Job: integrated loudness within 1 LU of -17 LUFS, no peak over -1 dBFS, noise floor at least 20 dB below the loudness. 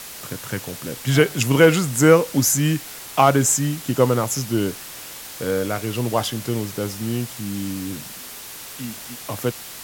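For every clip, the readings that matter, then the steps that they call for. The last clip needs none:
noise floor -37 dBFS; noise floor target -41 dBFS; loudness -20.5 LUFS; peak level -3.0 dBFS; loudness target -17.0 LUFS
-> noise reduction 6 dB, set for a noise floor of -37 dBFS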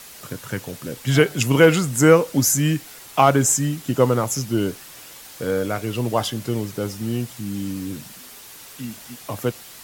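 noise floor -42 dBFS; loudness -20.5 LUFS; peak level -3.0 dBFS; loudness target -17.0 LUFS
-> trim +3.5 dB; peak limiter -1 dBFS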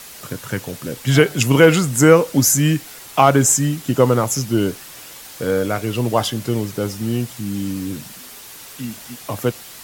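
loudness -17.5 LUFS; peak level -1.0 dBFS; noise floor -38 dBFS

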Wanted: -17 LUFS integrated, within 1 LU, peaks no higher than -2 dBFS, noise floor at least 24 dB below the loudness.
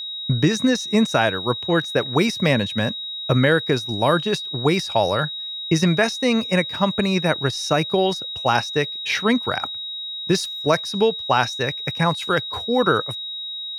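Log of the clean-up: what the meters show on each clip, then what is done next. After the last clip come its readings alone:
steady tone 3.8 kHz; tone level -28 dBFS; loudness -21.0 LUFS; peak level -3.0 dBFS; loudness target -17.0 LUFS
-> band-stop 3.8 kHz, Q 30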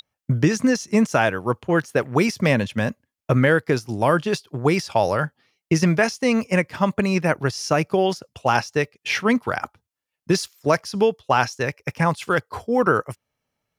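steady tone not found; loudness -21.5 LUFS; peak level -3.0 dBFS; loudness target -17.0 LUFS
-> trim +4.5 dB; peak limiter -2 dBFS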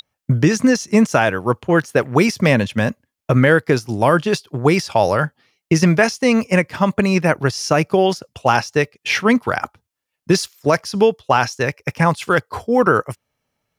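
loudness -17.5 LUFS; peak level -2.0 dBFS; noise floor -81 dBFS

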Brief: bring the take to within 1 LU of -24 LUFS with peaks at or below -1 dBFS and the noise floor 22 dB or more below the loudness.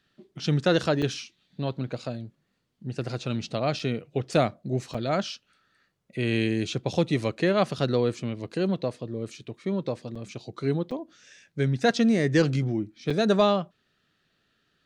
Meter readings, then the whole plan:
dropouts 6; longest dropout 5.0 ms; loudness -27.0 LUFS; peak level -10.0 dBFS; loudness target -24.0 LUFS
-> interpolate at 1.02/3.79/4.94/10.15/10.91/13.10 s, 5 ms; trim +3 dB

